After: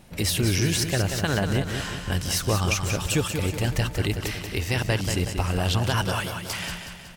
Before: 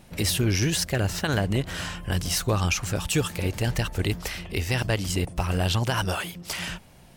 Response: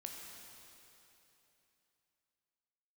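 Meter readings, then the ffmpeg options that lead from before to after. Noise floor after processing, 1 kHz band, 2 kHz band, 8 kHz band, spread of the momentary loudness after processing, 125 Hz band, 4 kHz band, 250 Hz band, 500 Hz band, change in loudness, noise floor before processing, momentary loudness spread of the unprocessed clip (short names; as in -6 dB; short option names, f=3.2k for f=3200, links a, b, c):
-39 dBFS, +1.0 dB, +1.0 dB, +1.0 dB, 7 LU, +1.0 dB, +1.0 dB, +1.0 dB, +1.0 dB, +1.0 dB, -51 dBFS, 8 LU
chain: -af "aecho=1:1:185|370|555|740|925|1110:0.447|0.223|0.112|0.0558|0.0279|0.014"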